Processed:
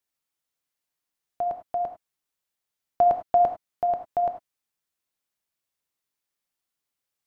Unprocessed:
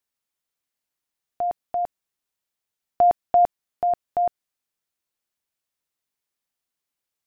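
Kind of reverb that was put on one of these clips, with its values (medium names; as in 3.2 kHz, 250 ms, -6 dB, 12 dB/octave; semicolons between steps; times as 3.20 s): gated-style reverb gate 120 ms flat, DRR 6 dB; trim -1.5 dB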